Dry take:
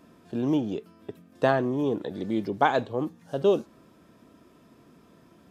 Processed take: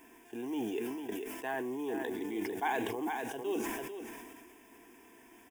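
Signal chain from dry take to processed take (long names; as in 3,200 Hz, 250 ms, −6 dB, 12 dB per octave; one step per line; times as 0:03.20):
reversed playback
downward compressor 10 to 1, threshold −31 dBFS, peak gain reduction 15.5 dB
reversed playback
tilt shelving filter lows −5 dB, about 940 Hz
single-tap delay 447 ms −9.5 dB
log-companded quantiser 6 bits
parametric band 89 Hz −11.5 dB 1 octave
phaser with its sweep stopped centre 850 Hz, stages 8
level that may fall only so fast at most 27 dB per second
level +3.5 dB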